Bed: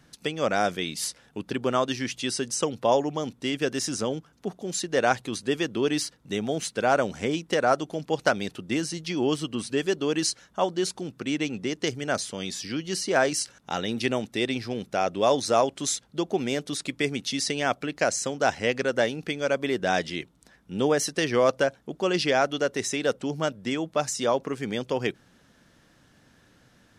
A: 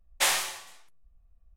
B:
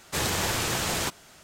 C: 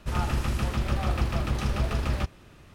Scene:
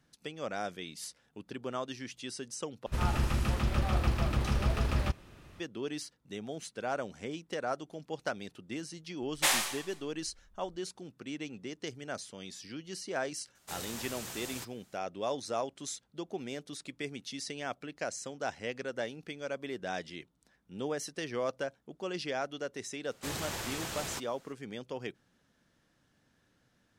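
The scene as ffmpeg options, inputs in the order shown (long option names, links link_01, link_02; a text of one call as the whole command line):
ffmpeg -i bed.wav -i cue0.wav -i cue1.wav -i cue2.wav -filter_complex "[2:a]asplit=2[link_01][link_02];[0:a]volume=-12.5dB[link_03];[link_01]highshelf=frequency=5800:gain=9[link_04];[link_03]asplit=2[link_05][link_06];[link_05]atrim=end=2.864[link_07];[3:a]atrim=end=2.74,asetpts=PTS-STARTPTS,volume=-2.5dB[link_08];[link_06]atrim=start=5.596[link_09];[1:a]atrim=end=1.56,asetpts=PTS-STARTPTS,volume=-2.5dB,afade=type=in:duration=0.004:curve=hsin,afade=type=out:start_time=1.556:duration=0.004:curve=hsin,adelay=406602S[link_10];[link_04]atrim=end=1.43,asetpts=PTS-STARTPTS,volume=-18dB,afade=type=in:duration=0.004:curve=hsin,afade=type=out:start_time=1.426:duration=0.004:curve=hsin,adelay=13550[link_11];[link_02]atrim=end=1.43,asetpts=PTS-STARTPTS,volume=-11dB,afade=type=in:duration=0.004:curve=hsin,afade=type=out:start_time=1.426:duration=0.004:curve=hsin,adelay=23100[link_12];[link_07][link_08]acrossfade=duration=0.004:curve1=hsin:curve2=hsin[link_13];[link_13][link_09]acrossfade=duration=0.004:curve1=hsin:curve2=hsin[link_14];[link_14][link_10][link_11][link_12]amix=inputs=4:normalize=0" out.wav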